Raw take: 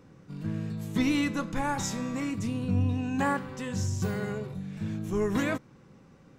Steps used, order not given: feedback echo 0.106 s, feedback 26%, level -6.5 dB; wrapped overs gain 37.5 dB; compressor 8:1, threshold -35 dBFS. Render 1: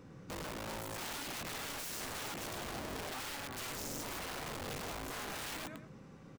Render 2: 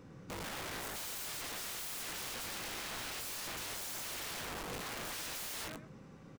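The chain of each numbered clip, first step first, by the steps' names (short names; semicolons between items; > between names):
feedback echo > compressor > wrapped overs; feedback echo > wrapped overs > compressor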